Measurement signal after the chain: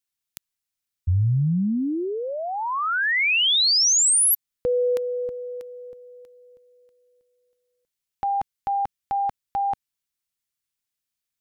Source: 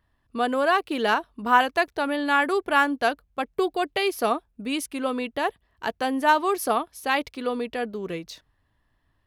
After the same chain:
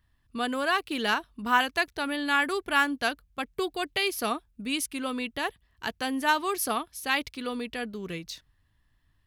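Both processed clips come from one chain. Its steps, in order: bell 590 Hz -11 dB 2.5 oct; gain +2.5 dB

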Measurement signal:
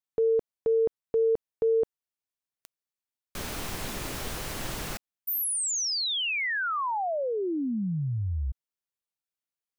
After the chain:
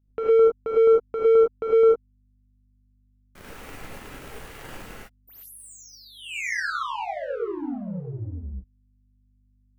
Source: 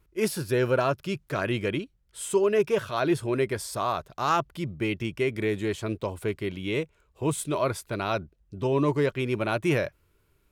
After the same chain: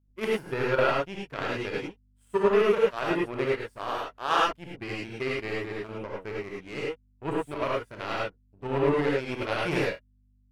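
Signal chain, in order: expander -53 dBFS; resonant high shelf 2900 Hz -7 dB, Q 1.5; power-law curve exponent 2; hum 50 Hz, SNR 34 dB; non-linear reverb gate 0.13 s rising, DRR -4.5 dB

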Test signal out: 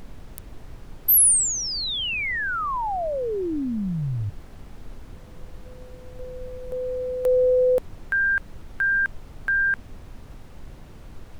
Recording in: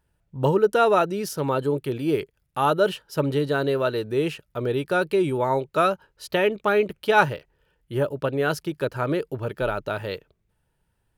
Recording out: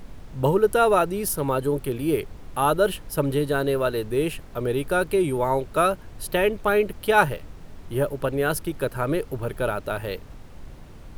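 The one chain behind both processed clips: resonant high shelf 7800 Hz +9 dB, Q 1.5; added noise brown -38 dBFS

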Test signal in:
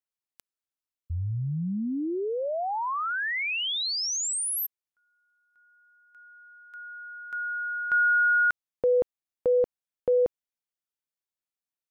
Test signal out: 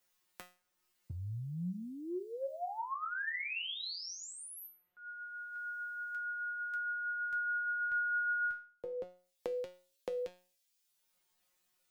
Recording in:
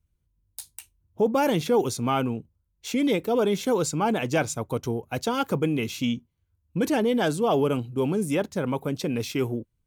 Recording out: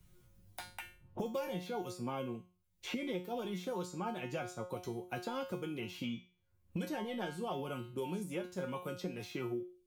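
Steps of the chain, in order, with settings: dynamic EQ 8200 Hz, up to -5 dB, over -46 dBFS, Q 0.82; flange 0.93 Hz, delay 7.5 ms, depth 2.7 ms, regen +35%; resonator 180 Hz, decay 0.33 s, harmonics all, mix 90%; three-band squash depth 100%; gain +1 dB

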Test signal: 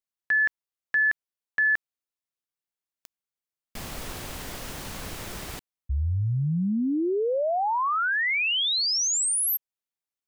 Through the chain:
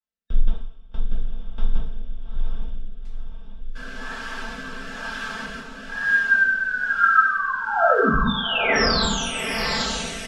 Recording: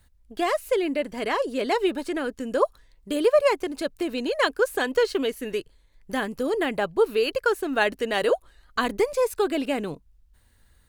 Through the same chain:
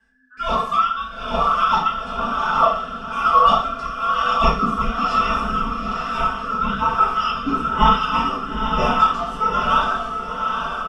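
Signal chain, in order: band inversion scrambler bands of 2000 Hz; high shelf 4200 Hz -9 dB; on a send: diffused feedback echo 0.832 s, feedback 51%, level -3.5 dB; on the sum: two-slope reverb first 0.56 s, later 2.8 s, from -22 dB, DRR -6.5 dB; flange 1.6 Hz, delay 6.8 ms, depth 5.3 ms, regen -63%; frequency shift -270 Hz; LPF 6000 Hz 12 dB/oct; rotary speaker horn 1.1 Hz; comb 4.5 ms, depth 99%; gain +1.5 dB

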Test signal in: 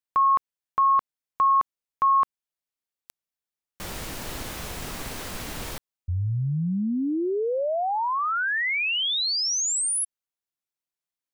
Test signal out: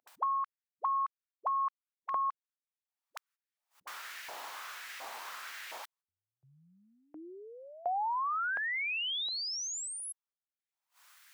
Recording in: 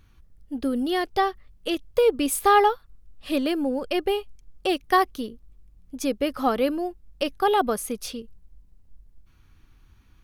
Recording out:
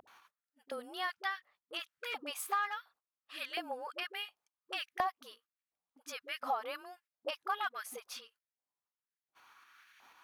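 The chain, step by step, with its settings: dispersion highs, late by 75 ms, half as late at 370 Hz; hard clip -12.5 dBFS; upward compressor 4:1, threshold -33 dBFS; dynamic EQ 9400 Hz, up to -5 dB, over -46 dBFS, Q 1.6; LFO high-pass saw up 1.4 Hz 700–2000 Hz; compressor 5:1, threshold -23 dBFS; high shelf 3800 Hz -3.5 dB; gate -58 dBFS, range -19 dB; gain -8 dB

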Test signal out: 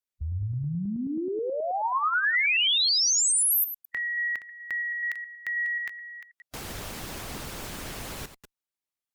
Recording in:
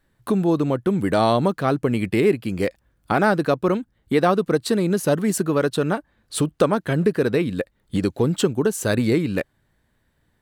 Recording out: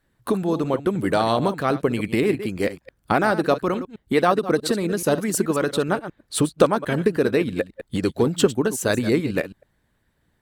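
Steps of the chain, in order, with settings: reverse delay 0.107 s, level -11 dB; harmonic-percussive split percussive +7 dB; added harmonics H 2 -41 dB, 3 -27 dB, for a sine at 2 dBFS; gain -4 dB

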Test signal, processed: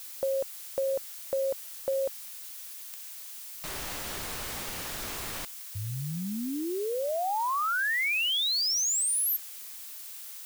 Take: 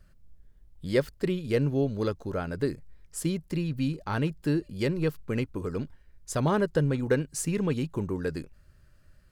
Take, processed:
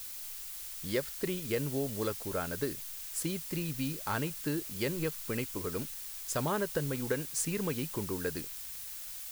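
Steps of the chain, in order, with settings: compressor, threshold -24 dBFS; crackle 14/s -38 dBFS; added noise blue -43 dBFS; low shelf 410 Hz -7.5 dB

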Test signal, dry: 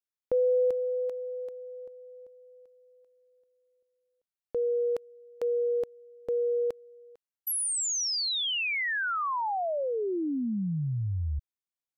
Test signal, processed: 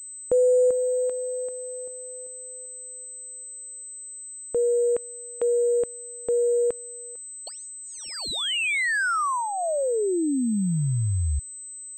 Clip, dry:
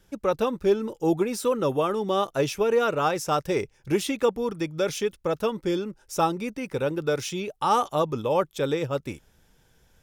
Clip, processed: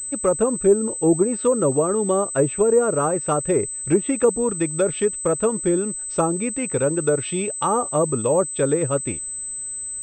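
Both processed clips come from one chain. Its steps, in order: treble ducked by the level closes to 860 Hz, closed at -19.5 dBFS; dynamic EQ 820 Hz, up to -6 dB, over -43 dBFS, Q 3.6; pulse-width modulation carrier 8100 Hz; gain +6 dB

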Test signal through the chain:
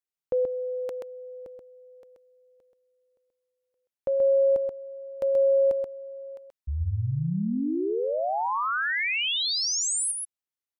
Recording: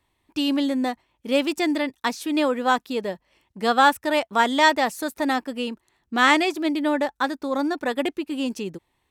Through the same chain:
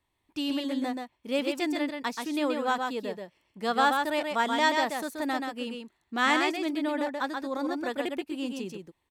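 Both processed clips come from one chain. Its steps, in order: echo 0.13 s -4.5 dB; gain -7.5 dB

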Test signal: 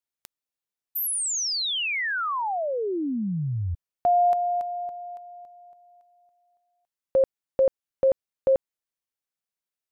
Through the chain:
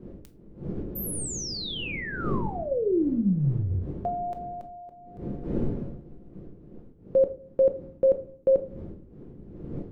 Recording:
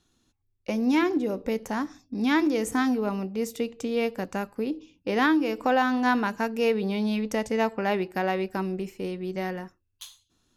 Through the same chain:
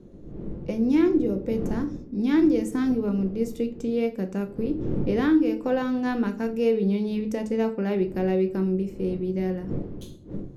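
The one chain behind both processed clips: wind noise 310 Hz -40 dBFS; resonant low shelf 580 Hz +8.5 dB, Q 1.5; shoebox room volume 330 m³, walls furnished, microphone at 0.84 m; gain -8 dB

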